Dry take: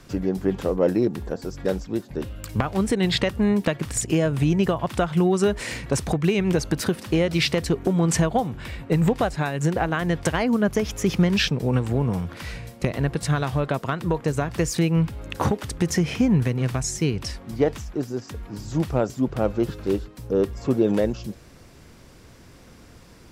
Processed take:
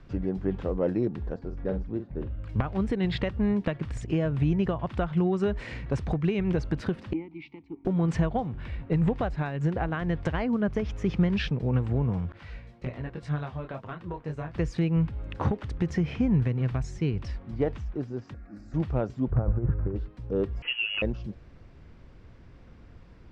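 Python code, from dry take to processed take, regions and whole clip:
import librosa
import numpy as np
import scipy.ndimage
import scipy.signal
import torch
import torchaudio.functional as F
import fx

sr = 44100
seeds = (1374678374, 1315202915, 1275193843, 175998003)

y = fx.chain(x, sr, fx.lowpass(hz=1500.0, slope=6),
    fx.doubler(ms=47.0, db=-9.0), at=(1.39, 2.47))
y = fx.chain(y, sr, fx.vowel_filter(vowel='u'),
    fx.band_widen(depth_pct=70), at=(7.13, 7.85))
y = fx.chain(y, sr, fx.gate_hold(open_db=-29.0, close_db=-40.0, hold_ms=71.0, range_db=-21, attack_ms=1.4, release_ms=100.0),
    fx.low_shelf(hz=240.0, db=-5.5),
    fx.detune_double(cents=11), at=(12.32, 14.55))
y = fx.chain(y, sr, fx.highpass(hz=130.0, slope=6),
    fx.fixed_phaser(hz=640.0, stages=8), at=(18.34, 18.74))
y = fx.chain(y, sr, fx.lowpass(hz=1700.0, slope=24),
    fx.over_compress(threshold_db=-25.0, ratio=-1.0),
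    fx.low_shelf_res(hz=170.0, db=6.0, q=1.5), at=(19.31, 19.96))
y = fx.chain(y, sr, fx.highpass(hz=190.0, slope=12),
    fx.freq_invert(carrier_hz=3100),
    fx.band_squash(depth_pct=70), at=(20.62, 21.02))
y = scipy.signal.sosfilt(scipy.signal.butter(2, 2900.0, 'lowpass', fs=sr, output='sos'), y)
y = fx.low_shelf(y, sr, hz=110.0, db=11.5)
y = y * 10.0 ** (-7.5 / 20.0)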